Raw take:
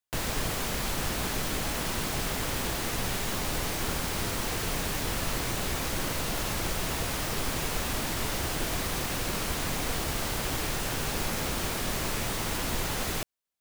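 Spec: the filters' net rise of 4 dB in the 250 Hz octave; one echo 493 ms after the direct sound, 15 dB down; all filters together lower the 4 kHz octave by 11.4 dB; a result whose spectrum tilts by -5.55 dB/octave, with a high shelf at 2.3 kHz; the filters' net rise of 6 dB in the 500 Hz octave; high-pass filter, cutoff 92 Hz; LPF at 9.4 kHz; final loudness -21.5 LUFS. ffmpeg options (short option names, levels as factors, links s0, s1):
-af "highpass=92,lowpass=9400,equalizer=f=250:t=o:g=3.5,equalizer=f=500:t=o:g=7,highshelf=f=2300:g=-8,equalizer=f=4000:t=o:g=-7.5,aecho=1:1:493:0.178,volume=3.35"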